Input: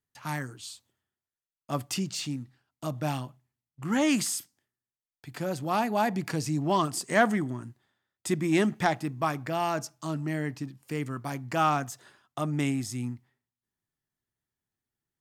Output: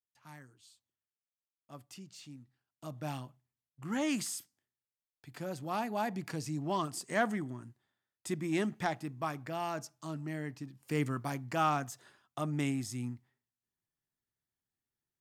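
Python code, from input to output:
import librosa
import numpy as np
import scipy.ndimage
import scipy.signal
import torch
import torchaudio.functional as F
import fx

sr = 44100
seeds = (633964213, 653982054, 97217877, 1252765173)

y = fx.gain(x, sr, db=fx.line((2.07, -19.0), (3.14, -8.0), (10.67, -8.0), (11.0, 1.0), (11.51, -5.0)))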